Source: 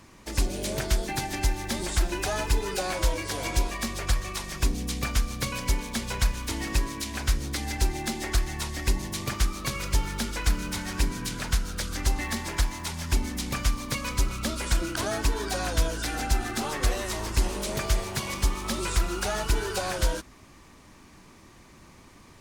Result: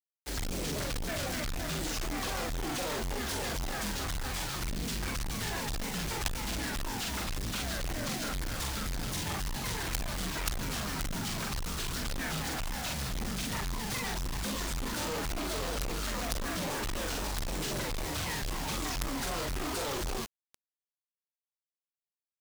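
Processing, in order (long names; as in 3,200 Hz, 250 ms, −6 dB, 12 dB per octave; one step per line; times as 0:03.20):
pitch shifter swept by a sawtooth −7.5 semitones, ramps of 253 ms
double-tracking delay 44 ms −3 dB
log-companded quantiser 2 bits
level −8 dB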